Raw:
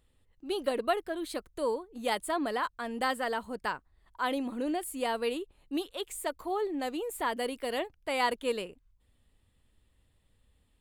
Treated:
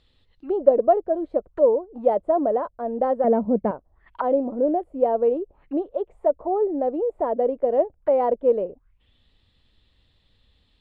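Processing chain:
0:03.24–0:03.71: hollow resonant body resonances 200/2,200 Hz, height 16 dB, ringing for 30 ms
envelope-controlled low-pass 600–4,300 Hz down, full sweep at −35 dBFS
level +5 dB

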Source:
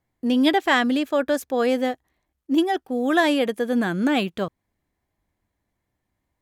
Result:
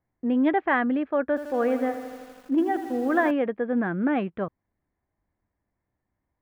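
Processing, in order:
low-pass filter 2,000 Hz 24 dB per octave
0:01.27–0:03.31: feedback echo at a low word length 81 ms, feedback 80%, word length 7 bits, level −11 dB
level −3 dB

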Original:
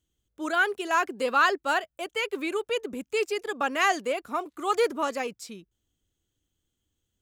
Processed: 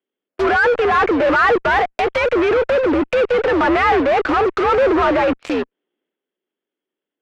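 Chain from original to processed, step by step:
single-sideband voice off tune +74 Hz 190–2,700 Hz
transient designer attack −5 dB, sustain +6 dB
in parallel at −3 dB: fuzz pedal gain 49 dB, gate −49 dBFS
on the sum: treble cut that deepens with the level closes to 2,100 Hz, closed at −15 dBFS
level +1 dB

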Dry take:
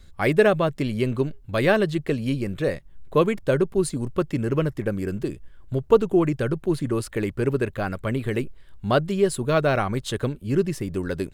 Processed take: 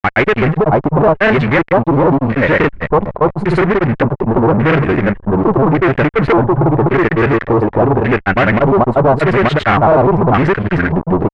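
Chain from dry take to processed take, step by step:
granular cloud, spray 606 ms
fuzz pedal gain 31 dB, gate −40 dBFS
auto-filter low-pass square 0.87 Hz 940–2,000 Hz
level +3.5 dB

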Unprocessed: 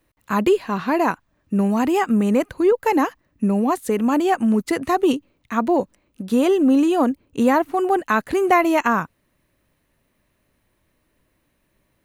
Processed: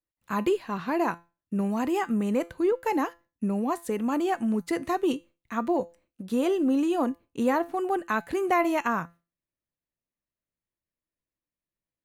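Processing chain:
noise gate with hold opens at −45 dBFS
tuned comb filter 170 Hz, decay 0.29 s, harmonics all, mix 50%
level −3 dB

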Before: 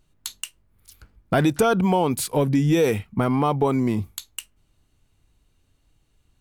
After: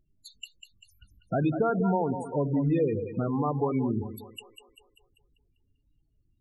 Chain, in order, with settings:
echo with a time of its own for lows and highs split 420 Hz, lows 89 ms, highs 196 ms, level −8 dB
spectral peaks only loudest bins 16
level −6.5 dB

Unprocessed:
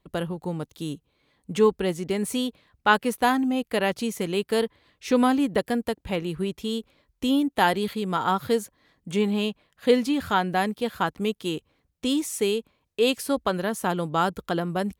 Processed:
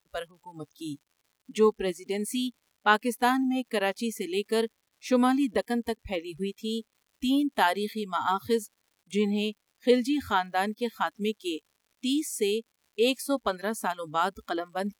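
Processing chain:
noise reduction from a noise print of the clip's start 24 dB
surface crackle 190 per second −51 dBFS
level −2.5 dB

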